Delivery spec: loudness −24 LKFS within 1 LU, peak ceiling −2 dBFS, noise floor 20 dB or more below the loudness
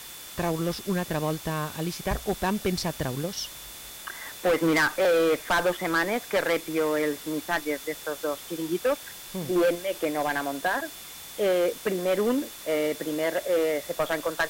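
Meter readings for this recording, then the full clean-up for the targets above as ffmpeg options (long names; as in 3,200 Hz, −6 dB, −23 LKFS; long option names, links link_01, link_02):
interfering tone 3,500 Hz; level of the tone −49 dBFS; background noise floor −42 dBFS; target noise floor −48 dBFS; integrated loudness −27.5 LKFS; sample peak −16.5 dBFS; target loudness −24.0 LKFS
→ -af "bandreject=frequency=3500:width=30"
-af "afftdn=noise_reduction=6:noise_floor=-42"
-af "volume=3.5dB"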